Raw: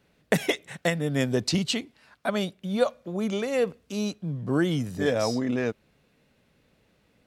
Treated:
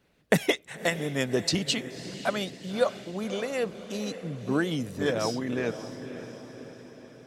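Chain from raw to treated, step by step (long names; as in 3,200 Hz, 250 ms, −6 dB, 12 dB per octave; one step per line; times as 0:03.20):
feedback delay with all-pass diffusion 572 ms, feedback 53%, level −11 dB
harmonic and percussive parts rebalanced percussive +7 dB
level −6 dB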